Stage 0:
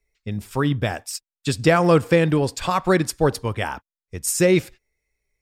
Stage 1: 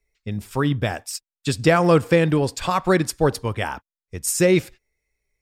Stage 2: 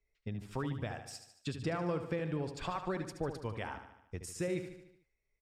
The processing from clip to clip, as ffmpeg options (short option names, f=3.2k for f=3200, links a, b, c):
-af anull
-af "acompressor=threshold=-30dB:ratio=3,aemphasis=mode=reproduction:type=50fm,aecho=1:1:74|148|222|296|370|444:0.335|0.184|0.101|0.0557|0.0307|0.0169,volume=-7.5dB"